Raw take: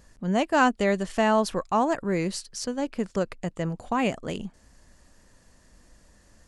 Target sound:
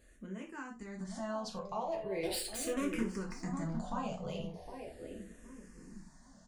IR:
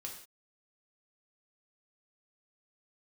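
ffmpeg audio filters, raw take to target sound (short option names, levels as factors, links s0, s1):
-filter_complex "[0:a]bandreject=f=60:t=h:w=6,bandreject=f=120:t=h:w=6,bandreject=f=180:t=h:w=6,bandreject=f=240:t=h:w=6,bandreject=f=300:t=h:w=6,bandreject=f=360:t=h:w=6,bandreject=f=420:t=h:w=6,bandreject=f=480:t=h:w=6,acompressor=threshold=0.0224:ratio=6,alimiter=level_in=2:limit=0.0631:level=0:latency=1:release=51,volume=0.501,dynaudnorm=f=320:g=9:m=2,asettb=1/sr,asplit=3[s0][s1][s2];[s0]atrim=end=2.234[s3];[s1]atrim=start=2.23:end=3.01,asetpts=PTS-STARTPTS,afade=t=in:d=0.004:c=qsin,afade=t=out:st=0.776:d=0.004:c=qsin,aeval=exprs='0.0631*(cos(1*acos(clip(val(0)/0.0631,-1,1)))-cos(1*PI/2))+0.0282*(cos(5*acos(clip(val(0)/0.0631,-1,1)))-cos(5*PI/2))':c=same[s4];[s2]atrim=start=3.006[s5];[s3][s4]acrossfade=d=0.004:c1=hsin:c2=qsin[s6];[s6][s5]acrossfade=d=0.004:c1=qsin:c2=hsin,asplit=2[s7][s8];[s8]adelay=762,lowpass=f=890:p=1,volume=0.562,asplit=2[s9][s10];[s10]adelay=762,lowpass=f=890:p=1,volume=0.36,asplit=2[s11][s12];[s12]adelay=762,lowpass=f=890:p=1,volume=0.36,asplit=2[s13][s14];[s14]adelay=762,lowpass=f=890:p=1,volume=0.36[s15];[s7][s9][s11][s13][s15]amix=inputs=5:normalize=0[s16];[1:a]atrim=start_sample=2205,asetrate=83790,aresample=44100[s17];[s16][s17]afir=irnorm=-1:irlink=0,asplit=2[s18][s19];[s19]afreqshift=-0.39[s20];[s18][s20]amix=inputs=2:normalize=1,volume=1.88"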